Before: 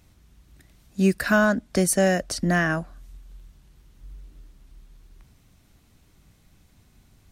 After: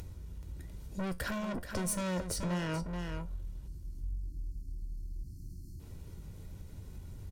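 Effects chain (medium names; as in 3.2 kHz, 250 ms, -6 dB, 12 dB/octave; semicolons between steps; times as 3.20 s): tilt shelf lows +8 dB, about 850 Hz; valve stage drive 25 dB, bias 0.5; feedback comb 89 Hz, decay 0.18 s, harmonics all, mix 60%; upward compressor, threshold -45 dBFS; spectral selection erased 3.67–5.80 s, 380–4100 Hz; delay 429 ms -9.5 dB; compression 2:1, threshold -42 dBFS, peak gain reduction 9.5 dB; treble shelf 4.6 kHz +7 dB; comb 2.1 ms, depth 41%; trim +4.5 dB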